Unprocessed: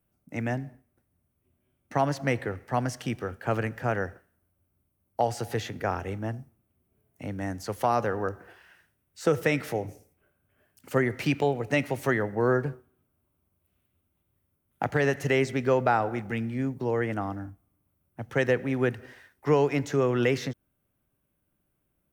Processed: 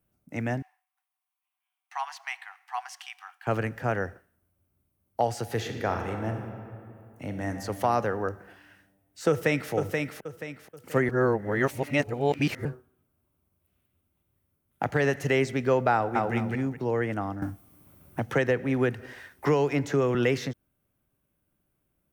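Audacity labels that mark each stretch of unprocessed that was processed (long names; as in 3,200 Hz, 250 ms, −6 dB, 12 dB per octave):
0.620000	3.470000	Chebyshev high-pass with heavy ripple 730 Hz, ripple 6 dB
5.470000	7.510000	thrown reverb, RT60 2.5 s, DRR 4.5 dB
9.290000	9.720000	delay throw 480 ms, feedback 35%, level −4 dB
11.090000	12.650000	reverse
15.940000	16.340000	delay throw 210 ms, feedback 25%, level −0.5 dB
17.420000	20.150000	multiband upward and downward compressor depth 70%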